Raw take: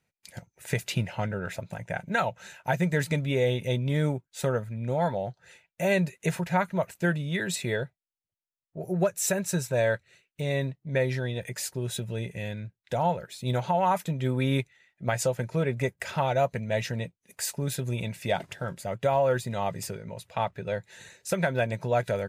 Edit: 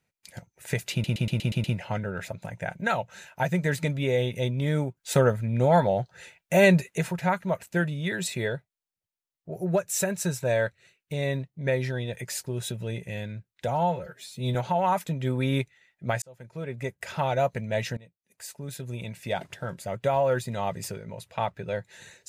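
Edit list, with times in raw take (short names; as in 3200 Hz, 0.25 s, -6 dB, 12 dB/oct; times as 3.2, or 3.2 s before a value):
0.92 stutter 0.12 s, 7 plays
4.25–6.2 gain +6.5 dB
12.96–13.54 stretch 1.5×
15.21–16.27 fade in
16.96–18.79 fade in, from -21 dB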